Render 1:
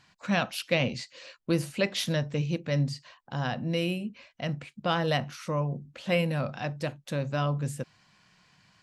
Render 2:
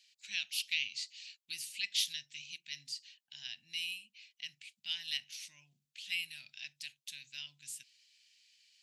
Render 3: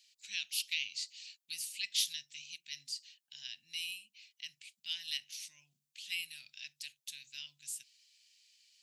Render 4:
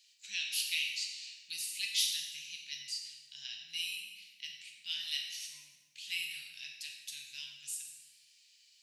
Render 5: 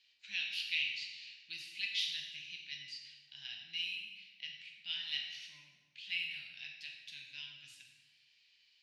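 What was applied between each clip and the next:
inverse Chebyshev high-pass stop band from 1.3 kHz, stop band 40 dB
treble shelf 3.5 kHz +10.5 dB; trim -6 dB
plate-style reverb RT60 1.3 s, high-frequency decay 0.75×, DRR 0 dB
distance through air 310 m; trim +5 dB

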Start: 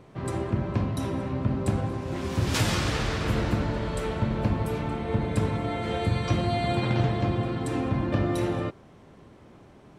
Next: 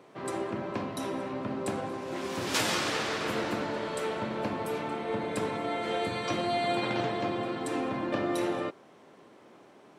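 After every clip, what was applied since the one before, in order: high-pass 310 Hz 12 dB/octave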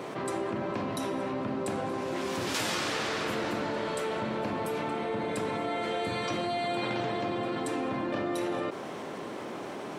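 level flattener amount 70%; trim -4 dB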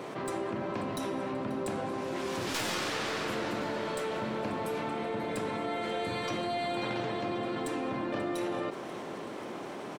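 tracing distortion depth 0.03 ms; feedback delay 536 ms, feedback 60%, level -18 dB; trim -2 dB

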